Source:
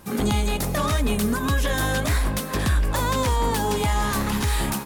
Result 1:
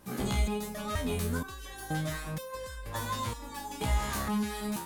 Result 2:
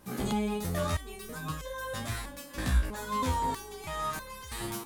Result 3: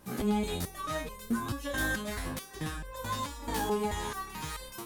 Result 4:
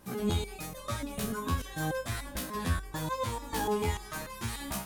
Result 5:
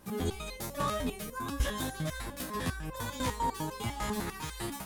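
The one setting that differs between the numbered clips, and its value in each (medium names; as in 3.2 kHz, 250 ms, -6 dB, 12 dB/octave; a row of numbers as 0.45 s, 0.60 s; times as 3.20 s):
resonator arpeggio, rate: 2.1 Hz, 3.1 Hz, 4.6 Hz, 6.8 Hz, 10 Hz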